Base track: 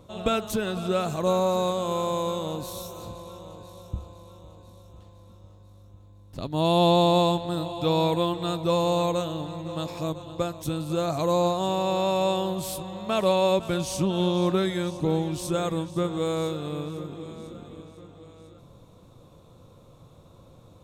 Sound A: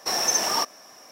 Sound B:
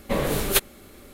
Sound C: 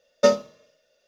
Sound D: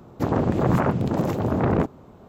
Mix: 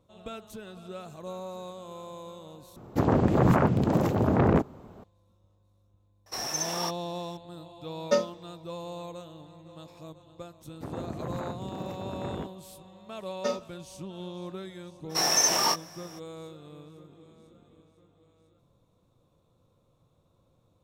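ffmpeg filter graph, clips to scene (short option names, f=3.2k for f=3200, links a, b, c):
-filter_complex "[4:a]asplit=2[a][b];[1:a]asplit=2[c][d];[3:a]asplit=2[e][f];[0:a]volume=-15.5dB[g];[f]asplit=2[h][i];[i]adelay=37,volume=-7dB[j];[h][j]amix=inputs=2:normalize=0[k];[d]asplit=2[l][m];[m]adelay=21,volume=-3.5dB[n];[l][n]amix=inputs=2:normalize=0[o];[g]asplit=2[p][q];[p]atrim=end=2.764[r];[a]atrim=end=2.28,asetpts=PTS-STARTPTS,volume=-1dB[s];[q]atrim=start=5.036[t];[c]atrim=end=1.11,asetpts=PTS-STARTPTS,volume=-9dB,afade=t=in:d=0.004:c=hsin,afade=t=out:st=1.106:d=0.004:c=hsin,adelay=276066S[u];[e]atrim=end=1.07,asetpts=PTS-STARTPTS,volume=-7dB,afade=t=in:d=0.004:c=hsin,afade=t=out:st=1.066:d=0.004:c=hsin,adelay=7880[v];[b]atrim=end=2.28,asetpts=PTS-STARTPTS,volume=-15.5dB,afade=t=in:d=0.004:c=hsin,afade=t=out:st=2.276:d=0.004:c=hsin,adelay=10610[w];[k]atrim=end=1.07,asetpts=PTS-STARTPTS,volume=-12dB,afade=t=in:d=0.004:c=hsin,afade=t=out:st=1.066:d=0.004:c=hsin,adelay=13210[x];[o]atrim=end=1.11,asetpts=PTS-STARTPTS,volume=-2dB,afade=t=in:d=0.02,afade=t=out:st=1.09:d=0.02,adelay=15090[y];[r][s]acrossfade=d=0.004:c1=hsin:c2=hsin[z];[z][t]acrossfade=d=0.004:c1=hsin:c2=hsin[aa];[aa][u][v][w][x][y]amix=inputs=6:normalize=0"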